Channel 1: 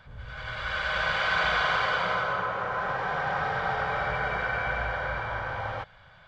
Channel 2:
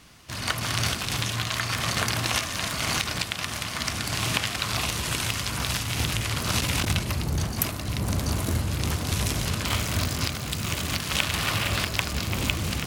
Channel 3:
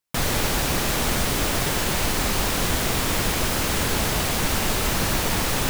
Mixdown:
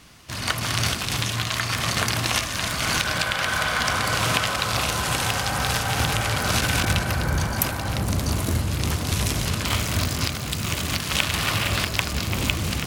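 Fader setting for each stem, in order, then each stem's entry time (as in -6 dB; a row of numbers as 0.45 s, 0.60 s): 0.0 dB, +2.5 dB, mute; 2.20 s, 0.00 s, mute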